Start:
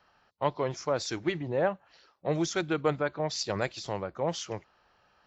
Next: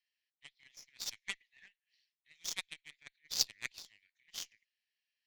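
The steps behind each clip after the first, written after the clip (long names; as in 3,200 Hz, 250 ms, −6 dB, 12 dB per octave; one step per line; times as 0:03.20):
Butterworth high-pass 1,800 Hz 96 dB per octave
harmonic generator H 3 −13 dB, 4 −32 dB, 7 −28 dB, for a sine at −17.5 dBFS
level +10 dB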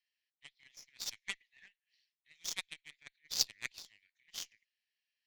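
no processing that can be heard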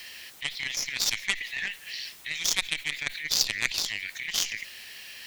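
envelope flattener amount 70%
level +5.5 dB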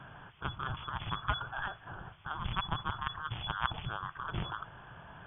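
voice inversion scrambler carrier 3,400 Hz
graphic EQ with 10 bands 125 Hz +10 dB, 250 Hz −11 dB, 500 Hz −11 dB, 2,000 Hz −7 dB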